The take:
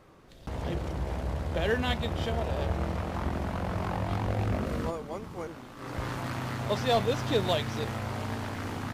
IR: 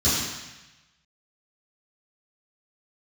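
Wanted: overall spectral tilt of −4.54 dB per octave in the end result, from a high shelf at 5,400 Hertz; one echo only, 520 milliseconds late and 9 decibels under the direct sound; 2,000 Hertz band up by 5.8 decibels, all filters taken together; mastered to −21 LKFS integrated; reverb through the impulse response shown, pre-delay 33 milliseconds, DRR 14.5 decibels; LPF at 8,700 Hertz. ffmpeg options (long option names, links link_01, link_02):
-filter_complex "[0:a]lowpass=8700,equalizer=frequency=2000:width_type=o:gain=8,highshelf=frequency=5400:gain=-5.5,aecho=1:1:520:0.355,asplit=2[link_01][link_02];[1:a]atrim=start_sample=2205,adelay=33[link_03];[link_02][link_03]afir=irnorm=-1:irlink=0,volume=-30dB[link_04];[link_01][link_04]amix=inputs=2:normalize=0,volume=8.5dB"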